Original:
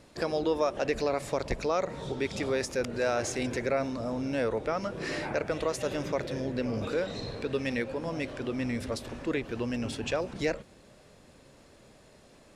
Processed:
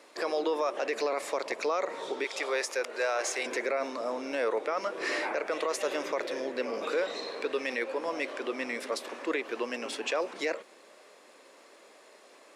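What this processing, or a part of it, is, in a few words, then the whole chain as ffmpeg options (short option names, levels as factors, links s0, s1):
laptop speaker: -filter_complex "[0:a]asettb=1/sr,asplit=3[s0][s1][s2];[s0]atrim=end=2.244[s3];[s1]atrim=start=2.24:end=3.46,asetpts=PTS-STARTPTS,afade=t=in:d=0.004:c=qsin,afade=t=out:st=1.216:d=0.004:c=qsin,highpass=470[s4];[s2]atrim=start=3.456[s5];[s3][s4]acrossfade=d=0.004:c1=hsin:c2=qsin[s6];[s6][s5]acrossfade=d=0.004:c1=qsin:c2=hsin,highpass=f=340:w=0.5412,highpass=f=340:w=1.3066,equalizer=f=1100:t=o:w=0.42:g=5,equalizer=f=2100:t=o:w=0.54:g=4,alimiter=limit=0.075:level=0:latency=1:release=12,volume=1.26"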